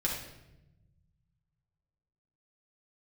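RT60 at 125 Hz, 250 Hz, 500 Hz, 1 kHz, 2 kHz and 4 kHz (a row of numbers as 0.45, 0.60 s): 2.6, 1.9, 1.1, 0.80, 0.80, 0.70 s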